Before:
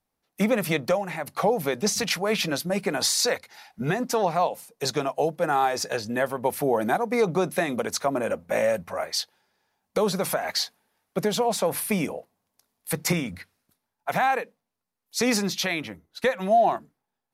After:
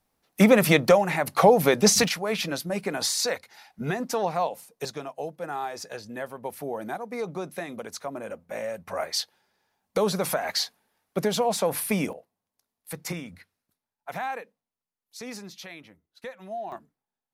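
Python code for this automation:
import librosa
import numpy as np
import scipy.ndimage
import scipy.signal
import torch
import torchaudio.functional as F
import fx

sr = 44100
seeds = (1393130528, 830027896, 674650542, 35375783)

y = fx.gain(x, sr, db=fx.steps((0.0, 6.0), (2.08, -3.0), (4.85, -9.5), (8.87, -0.5), (12.13, -9.0), (15.17, -15.5), (16.72, -8.0)))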